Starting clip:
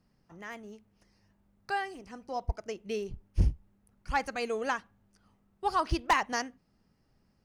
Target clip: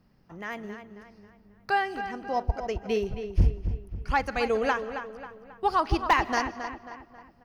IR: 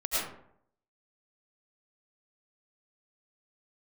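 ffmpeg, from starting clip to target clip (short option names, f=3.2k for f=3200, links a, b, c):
-filter_complex "[0:a]asplit=2[a][b];[1:a]atrim=start_sample=2205,adelay=44[c];[b][c]afir=irnorm=-1:irlink=0,volume=-28dB[d];[a][d]amix=inputs=2:normalize=0,alimiter=limit=-20.5dB:level=0:latency=1:release=360,equalizer=f=8.3k:t=o:w=1:g=-11,asplit=2[e][f];[f]adelay=270,lowpass=f=3.5k:p=1,volume=-9dB,asplit=2[g][h];[h]adelay=270,lowpass=f=3.5k:p=1,volume=0.45,asplit=2[i][j];[j]adelay=270,lowpass=f=3.5k:p=1,volume=0.45,asplit=2[k][l];[l]adelay=270,lowpass=f=3.5k:p=1,volume=0.45,asplit=2[m][n];[n]adelay=270,lowpass=f=3.5k:p=1,volume=0.45[o];[e][g][i][k][m][o]amix=inputs=6:normalize=0,volume=7dB"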